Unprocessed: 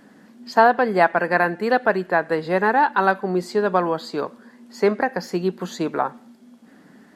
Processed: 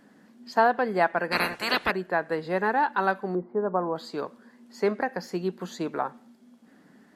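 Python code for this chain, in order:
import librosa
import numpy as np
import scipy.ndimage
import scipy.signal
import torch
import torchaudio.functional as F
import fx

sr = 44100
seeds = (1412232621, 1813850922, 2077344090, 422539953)

y = fx.spec_clip(x, sr, under_db=30, at=(1.31, 1.9), fade=0.02)
y = fx.lowpass(y, sr, hz=1200.0, slope=24, at=(3.35, 3.96))
y = F.gain(torch.from_numpy(y), -6.5).numpy()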